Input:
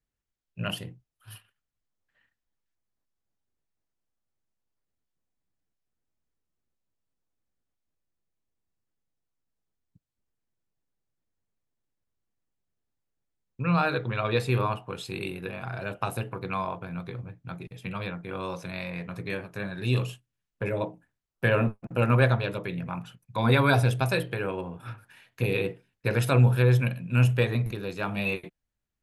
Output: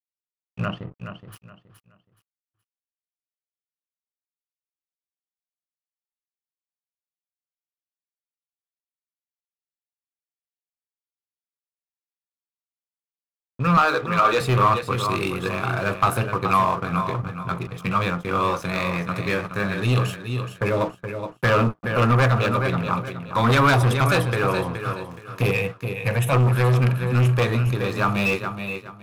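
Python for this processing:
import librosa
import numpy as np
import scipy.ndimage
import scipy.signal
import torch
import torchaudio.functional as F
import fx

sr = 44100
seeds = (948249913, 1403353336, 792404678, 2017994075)

p1 = fx.rider(x, sr, range_db=4, speed_s=2.0)
p2 = x + (p1 * 10.0 ** (-2.0 / 20.0))
p3 = fx.leveller(p2, sr, passes=1)
p4 = fx.fixed_phaser(p3, sr, hz=1300.0, stages=6, at=(25.51, 26.33))
p5 = np.sign(p4) * np.maximum(np.abs(p4) - 10.0 ** (-43.5 / 20.0), 0.0)
p6 = fx.spacing_loss(p5, sr, db_at_10k=43, at=(0.64, 1.32), fade=0.02)
p7 = fx.highpass(p6, sr, hz=300.0, slope=12, at=(13.77, 14.41))
p8 = p7 + fx.echo_feedback(p7, sr, ms=422, feedback_pct=26, wet_db=-10, dry=0)
p9 = 10.0 ** (-14.5 / 20.0) * np.tanh(p8 / 10.0 ** (-14.5 / 20.0))
y = fx.peak_eq(p9, sr, hz=1200.0, db=11.0, octaves=0.33)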